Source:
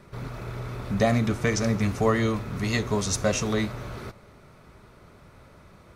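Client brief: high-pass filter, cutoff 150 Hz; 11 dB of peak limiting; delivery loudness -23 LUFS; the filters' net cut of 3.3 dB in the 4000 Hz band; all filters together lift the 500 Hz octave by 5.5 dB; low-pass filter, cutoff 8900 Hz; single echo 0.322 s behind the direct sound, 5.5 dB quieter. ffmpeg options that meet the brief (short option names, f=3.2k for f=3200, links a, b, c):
-af "highpass=150,lowpass=8.9k,equalizer=f=500:t=o:g=6.5,equalizer=f=4k:t=o:g=-4,alimiter=limit=-16.5dB:level=0:latency=1,aecho=1:1:322:0.531,volume=4dB"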